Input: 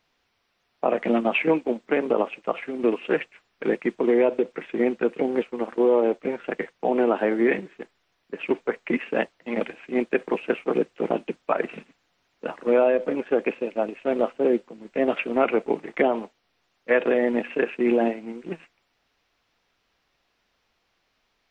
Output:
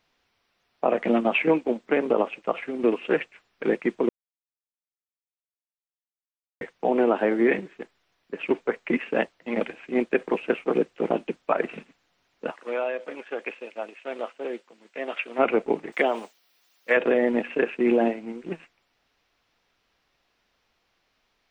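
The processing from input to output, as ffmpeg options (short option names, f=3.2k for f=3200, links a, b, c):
-filter_complex "[0:a]asplit=3[a][b][c];[a]afade=t=out:st=12.5:d=0.02[d];[b]highpass=f=1.5k:p=1,afade=t=in:st=12.5:d=0.02,afade=t=out:st=15.38:d=0.02[e];[c]afade=t=in:st=15.38:d=0.02[f];[d][e][f]amix=inputs=3:normalize=0,asettb=1/sr,asplit=3[g][h][i];[g]atrim=end=15.924[j];[h]atrim=start=15.92:end=16.97,asetpts=PTS-STARTPTS,afade=t=in:d=0.004:c=qsin,afade=t=out:st=1.046:d=0.004:c=qsin,aemphasis=mode=production:type=riaa[k];[i]atrim=start=16.966[l];[j][k]acrossfade=d=0.004:c1=hsin:c2=qsin[m];[m][l]acrossfade=d=0.004:c1=qsin:c2=hsin,asplit=3[n][o][p];[n]atrim=end=4.09,asetpts=PTS-STARTPTS,afade=t=out:st=4.086:d=0.004:c=hsin[q];[o]atrim=start=4.09:end=6.61,asetpts=PTS-STARTPTS,volume=0[r];[p]atrim=start=6.61,asetpts=PTS-STARTPTS,afade=t=in:d=0.004:c=hsin[s];[q][r][s]concat=n=3:v=0:a=1"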